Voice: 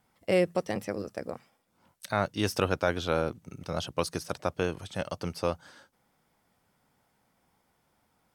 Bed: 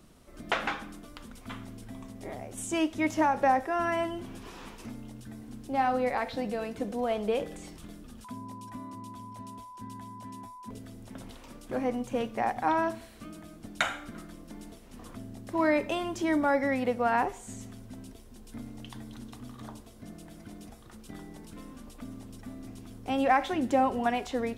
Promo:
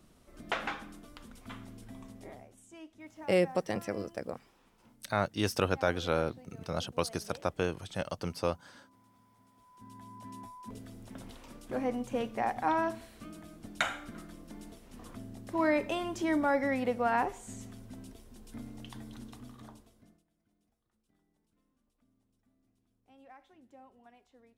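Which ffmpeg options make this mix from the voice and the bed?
-filter_complex "[0:a]adelay=3000,volume=-2dB[a];[1:a]volume=15dB,afade=t=out:st=2.11:d=0.49:silence=0.133352,afade=t=in:st=9.55:d=0.82:silence=0.105925,afade=t=out:st=19.22:d=1.02:silence=0.0375837[b];[a][b]amix=inputs=2:normalize=0"

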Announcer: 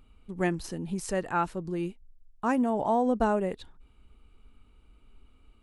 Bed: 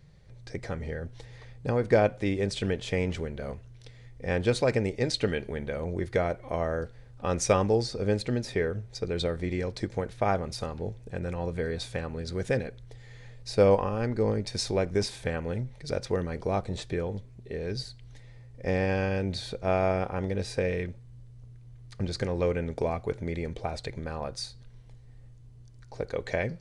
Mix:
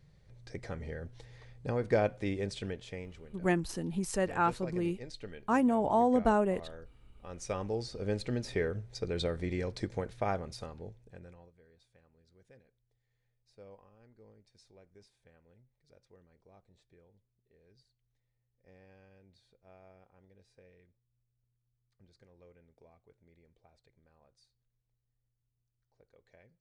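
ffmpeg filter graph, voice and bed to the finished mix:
-filter_complex "[0:a]adelay=3050,volume=-1dB[a];[1:a]volume=8dB,afade=t=out:st=2.33:d=0.78:silence=0.251189,afade=t=in:st=7.29:d=1.25:silence=0.199526,afade=t=out:st=9.86:d=1.66:silence=0.0375837[b];[a][b]amix=inputs=2:normalize=0"

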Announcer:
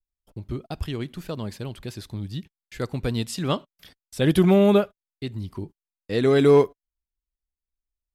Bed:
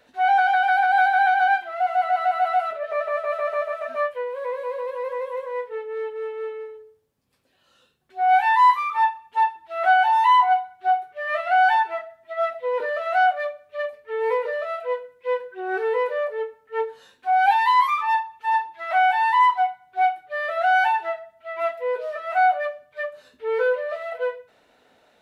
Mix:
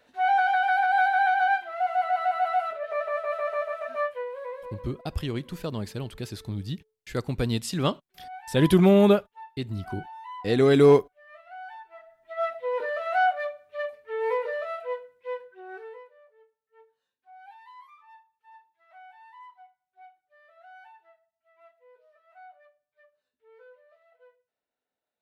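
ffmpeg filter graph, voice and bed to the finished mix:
-filter_complex "[0:a]adelay=4350,volume=-0.5dB[a];[1:a]volume=16.5dB,afade=t=out:st=4.12:d=0.86:silence=0.0944061,afade=t=in:st=11.9:d=0.56:silence=0.0944061,afade=t=out:st=14.57:d=1.53:silence=0.0421697[b];[a][b]amix=inputs=2:normalize=0"

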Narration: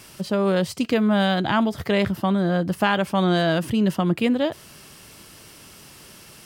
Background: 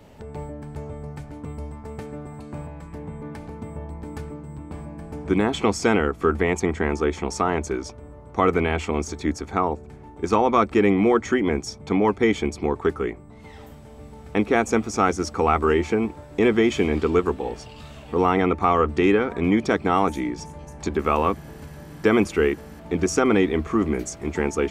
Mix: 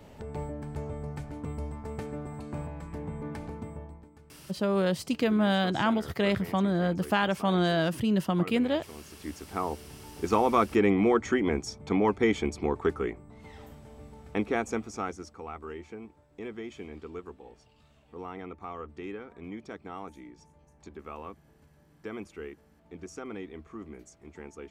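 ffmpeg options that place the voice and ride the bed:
-filter_complex "[0:a]adelay=4300,volume=-5.5dB[a];[1:a]volume=14.5dB,afade=t=out:st=3.46:d=0.64:silence=0.105925,afade=t=in:st=9.06:d=1.01:silence=0.149624,afade=t=out:st=13.9:d=1.49:silence=0.158489[b];[a][b]amix=inputs=2:normalize=0"

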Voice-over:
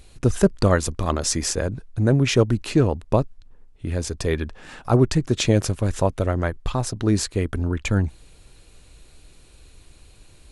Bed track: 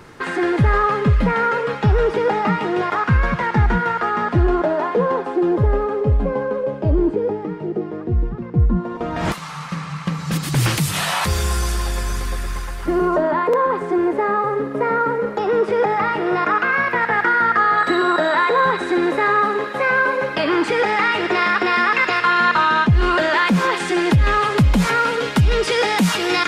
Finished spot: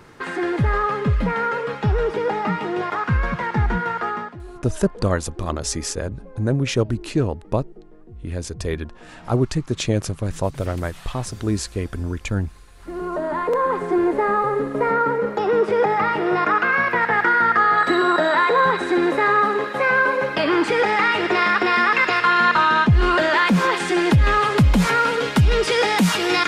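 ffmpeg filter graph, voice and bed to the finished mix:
-filter_complex "[0:a]adelay=4400,volume=-2.5dB[a];[1:a]volume=17.5dB,afade=t=out:st=4.09:d=0.27:silence=0.125893,afade=t=in:st=12.71:d=1.19:silence=0.0841395[b];[a][b]amix=inputs=2:normalize=0"

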